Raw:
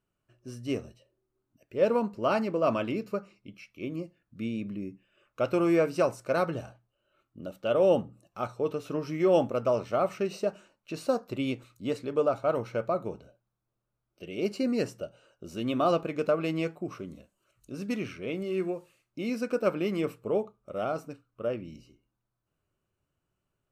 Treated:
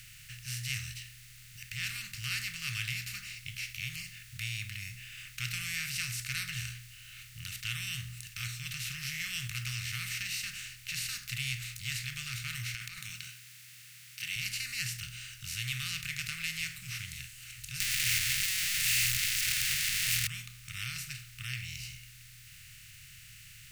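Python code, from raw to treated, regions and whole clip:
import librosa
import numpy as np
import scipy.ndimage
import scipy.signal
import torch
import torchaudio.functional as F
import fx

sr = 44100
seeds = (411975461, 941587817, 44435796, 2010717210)

y = fx.chain(x, sr, fx.highpass(hz=220.0, slope=24),
    fx.over_compress(threshold_db=-35.0, ratio=-1.0), at=(12.74, 14.36))
y = fx.chain(y, sr, fx.clip_1bit(),
    fx.tilt_shelf(db=-6.0, hz=1300.0), at=(17.8, 20.27))
y = fx.bin_compress(y, sr, power=0.4)
y = scipy.signal.sosfilt(scipy.signal.cheby1(4, 1.0, [130.0, 1800.0], 'bandstop', fs=sr, output='sos'), y)
y = F.gain(torch.from_numpy(y), -1.5).numpy()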